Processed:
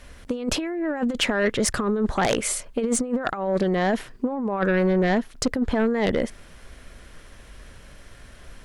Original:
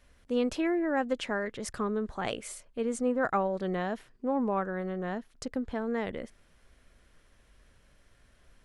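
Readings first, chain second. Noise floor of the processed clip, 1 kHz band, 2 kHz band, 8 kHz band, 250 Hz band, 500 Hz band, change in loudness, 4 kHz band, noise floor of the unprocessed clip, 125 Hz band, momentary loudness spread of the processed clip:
-48 dBFS, +5.5 dB, +9.0 dB, +15.5 dB, +8.0 dB, +7.5 dB, +8.0 dB, +13.5 dB, -64 dBFS, +11.5 dB, 6 LU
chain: negative-ratio compressor -33 dBFS, ratio -0.5; sine folder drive 9 dB, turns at -14.5 dBFS

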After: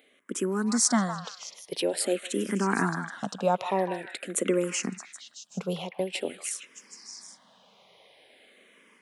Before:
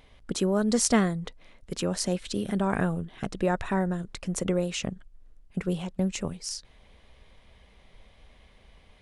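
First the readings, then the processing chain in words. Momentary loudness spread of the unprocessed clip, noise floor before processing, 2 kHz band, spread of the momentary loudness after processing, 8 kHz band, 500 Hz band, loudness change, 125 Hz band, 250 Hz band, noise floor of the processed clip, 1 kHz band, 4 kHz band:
13 LU, -58 dBFS, +2.0 dB, 18 LU, +3.0 dB, +0.5 dB, -0.5 dB, -5.5 dB, -2.5 dB, -61 dBFS, +3.0 dB, +0.5 dB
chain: HPF 210 Hz 24 dB/oct; high shelf 9200 Hz +6.5 dB; AGC gain up to 5 dB; delay with a stepping band-pass 0.155 s, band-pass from 1200 Hz, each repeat 0.7 oct, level -4 dB; endless phaser -0.47 Hz

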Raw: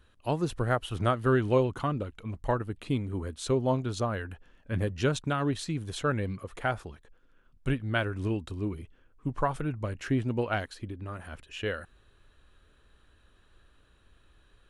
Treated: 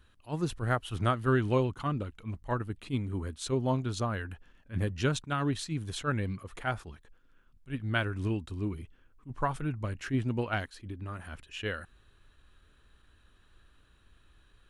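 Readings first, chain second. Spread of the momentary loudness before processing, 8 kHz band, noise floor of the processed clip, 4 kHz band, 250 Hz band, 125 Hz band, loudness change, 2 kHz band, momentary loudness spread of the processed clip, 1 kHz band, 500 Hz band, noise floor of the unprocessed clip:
12 LU, -0.5 dB, -64 dBFS, -0.5 dB, -2.0 dB, -1.0 dB, -2.0 dB, -1.0 dB, 12 LU, -2.0 dB, -4.5 dB, -63 dBFS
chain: bell 530 Hz -5 dB 1.1 oct; attack slew limiter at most 300 dB/s

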